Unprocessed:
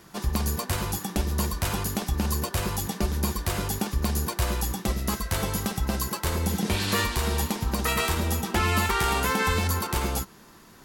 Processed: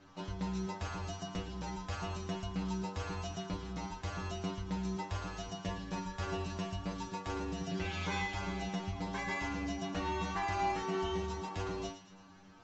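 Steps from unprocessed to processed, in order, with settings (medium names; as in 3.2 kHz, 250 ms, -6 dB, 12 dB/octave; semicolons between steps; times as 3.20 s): Chebyshev low-pass 8.5 kHz, order 6; treble shelf 4.5 kHz -10.5 dB; in parallel at 0 dB: compression, threshold -37 dBFS, peak gain reduction 15 dB; on the sum: wide varispeed 0.859×; inharmonic resonator 94 Hz, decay 0.43 s, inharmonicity 0.002; feedback echo behind a high-pass 113 ms, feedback 46%, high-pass 1.6 kHz, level -10.5 dB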